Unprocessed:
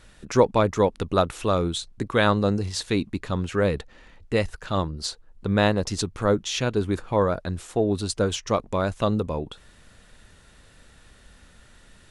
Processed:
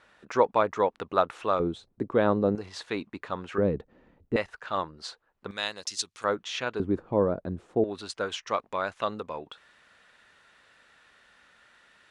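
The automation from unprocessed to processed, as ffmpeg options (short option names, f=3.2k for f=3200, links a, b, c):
-af "asetnsamples=n=441:p=0,asendcmd='1.6 bandpass f 400;2.55 bandpass f 1100;3.58 bandpass f 270;4.36 bandpass f 1300;5.51 bandpass f 5300;6.24 bandpass f 1400;6.8 bandpass f 310;7.84 bandpass f 1600',bandpass=f=1.1k:t=q:w=0.77:csg=0"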